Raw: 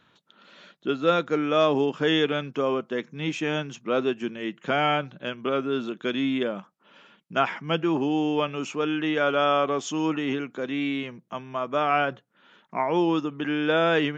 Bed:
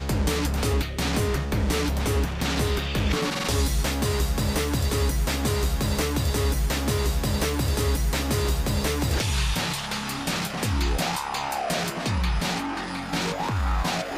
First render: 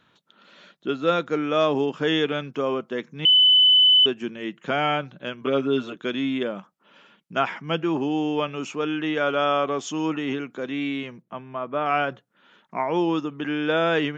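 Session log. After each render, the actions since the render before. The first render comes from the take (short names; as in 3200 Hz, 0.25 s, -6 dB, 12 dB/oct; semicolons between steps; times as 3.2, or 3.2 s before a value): 3.25–4.06 bleep 3010 Hz -12 dBFS; 5.41–5.96 comb 7 ms, depth 80%; 11.22–11.86 air absorption 310 m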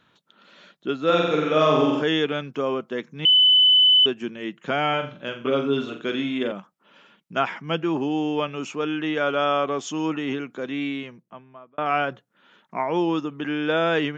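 1.05–2.02 flutter echo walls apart 7.8 m, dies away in 1.2 s; 4.89–6.52 flutter echo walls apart 7.3 m, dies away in 0.36 s; 10.83–11.78 fade out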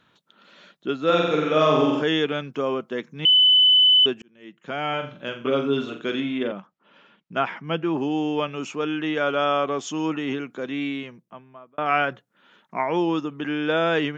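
4.22–5.22 fade in; 6.2–7.98 air absorption 120 m; 11.87–12.96 dynamic EQ 1900 Hz, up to +5 dB, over -37 dBFS, Q 1.4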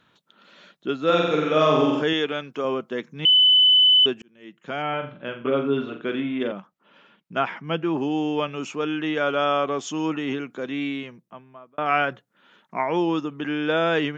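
2.13–2.65 low shelf 180 Hz -11 dB; 4.82–6.4 LPF 2600 Hz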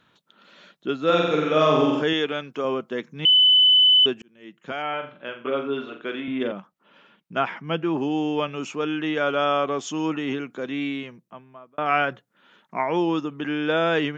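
4.72–6.28 HPF 460 Hz 6 dB/oct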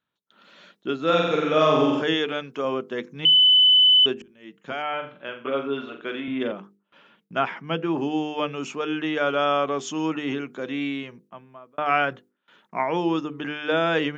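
gate with hold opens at -47 dBFS; notches 50/100/150/200/250/300/350/400/450/500 Hz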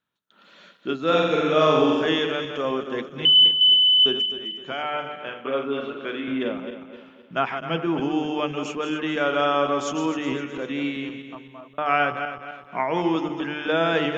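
regenerating reverse delay 0.129 s, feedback 62%, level -8 dB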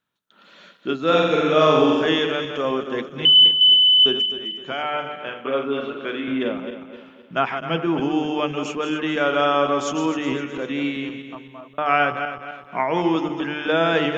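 gain +2.5 dB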